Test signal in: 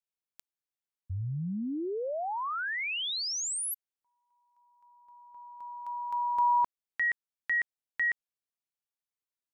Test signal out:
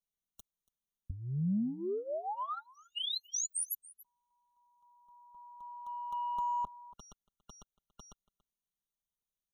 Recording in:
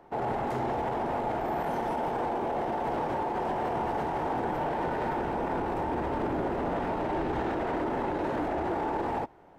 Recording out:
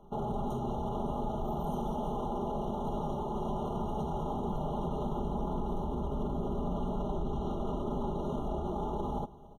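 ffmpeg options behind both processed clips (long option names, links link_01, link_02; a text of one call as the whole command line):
ffmpeg -i in.wav -af "lowshelf=frequency=99:gain=6.5,aecho=1:1:283:0.075,aeval=exprs='0.119*(cos(1*acos(clip(val(0)/0.119,-1,1)))-cos(1*PI/2))+0.00168*(cos(7*acos(clip(val(0)/0.119,-1,1)))-cos(7*PI/2))':channel_layout=same,bass=frequency=250:gain=11,treble=frequency=4000:gain=7,acompressor=threshold=-29dB:ratio=6:attack=19:release=54:knee=6:detection=peak,aecho=1:1:4.9:0.73,afftfilt=real='re*eq(mod(floor(b*sr/1024/1400),2),0)':imag='im*eq(mod(floor(b*sr/1024/1400),2),0)':win_size=1024:overlap=0.75,volume=-5.5dB" out.wav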